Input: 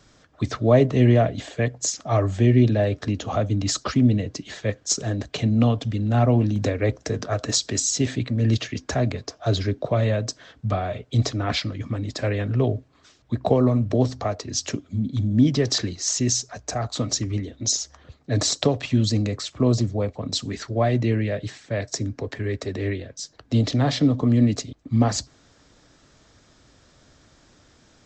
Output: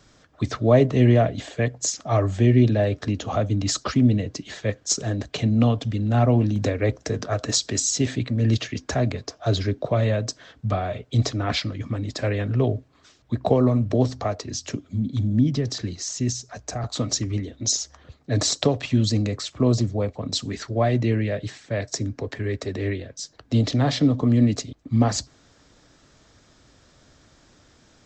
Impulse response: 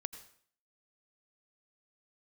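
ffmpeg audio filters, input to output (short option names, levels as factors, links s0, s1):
-filter_complex "[0:a]asettb=1/sr,asplit=3[s0][s1][s2];[s0]atrim=end=14.504[s3];[s1]atrim=start=14.5:end=16.84,asetpts=PTS-STARTPTS,afade=t=in:d=0.004:c=qsin,afade=t=out:st=2.336:d=0.004:c=qsin,acrossover=split=260[s4][s5];[s5]acompressor=threshold=0.0355:ratio=5[s6];[s4][s6]amix=inputs=2:normalize=0[s7];[s2]atrim=start=16.836[s8];[s3][s7]acrossfade=d=0.004:c1=hsin:c2=qsin[s9];[s9][s8]acrossfade=d=0.004:c1=qsin:c2=hsin"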